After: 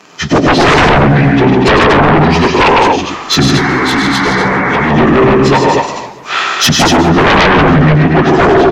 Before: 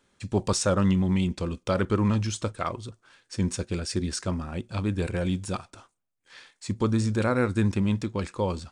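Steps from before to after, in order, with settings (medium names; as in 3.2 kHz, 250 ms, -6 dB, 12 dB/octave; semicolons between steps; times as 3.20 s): frequency-domain pitch shifter -5 st; recorder AGC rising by 6.5 dB/s; low-pass that closes with the level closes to 1.7 kHz, closed at -24.5 dBFS; high-pass 290 Hz 12 dB/octave; treble shelf 4.1 kHz -2.5 dB; loudspeakers at several distances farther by 36 m -6 dB, 52 m -5 dB, 82 m -6 dB; sine folder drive 15 dB, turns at -15.5 dBFS; painted sound noise, 3.57–4.90 s, 710–2300 Hz -22 dBFS; loudness maximiser +15.5 dB; modulated delay 135 ms, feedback 68%, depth 217 cents, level -19 dB; trim -2.5 dB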